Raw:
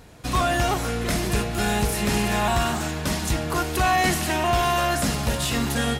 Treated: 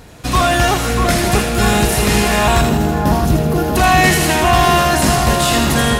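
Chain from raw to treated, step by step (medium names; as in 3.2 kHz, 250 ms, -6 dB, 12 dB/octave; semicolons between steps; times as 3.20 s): 2.61–3.76 s: graphic EQ 125/250/500/1000/2000/4000/8000 Hz +4/+3/+4/-11/-8/-5/-11 dB; two-band feedback delay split 1.5 kHz, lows 641 ms, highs 80 ms, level -4.5 dB; trim +8 dB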